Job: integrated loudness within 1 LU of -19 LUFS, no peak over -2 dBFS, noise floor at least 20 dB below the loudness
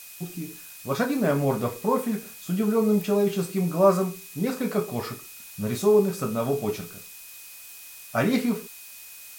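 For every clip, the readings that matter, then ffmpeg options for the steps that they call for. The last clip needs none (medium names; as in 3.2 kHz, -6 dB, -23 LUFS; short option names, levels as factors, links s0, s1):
steady tone 2.5 kHz; tone level -51 dBFS; noise floor -44 dBFS; noise floor target -46 dBFS; loudness -25.5 LUFS; peak level -7.5 dBFS; loudness target -19.0 LUFS
-> -af "bandreject=f=2500:w=30"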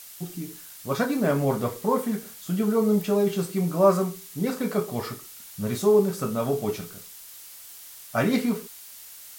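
steady tone not found; noise floor -45 dBFS; noise floor target -46 dBFS
-> -af "afftdn=nr=6:nf=-45"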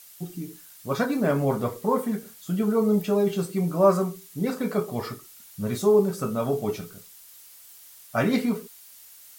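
noise floor -49 dBFS; loudness -25.5 LUFS; peak level -7.5 dBFS; loudness target -19.0 LUFS
-> -af "volume=2.11,alimiter=limit=0.794:level=0:latency=1"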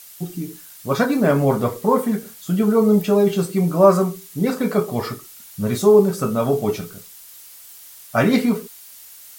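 loudness -19.0 LUFS; peak level -2.0 dBFS; noise floor -43 dBFS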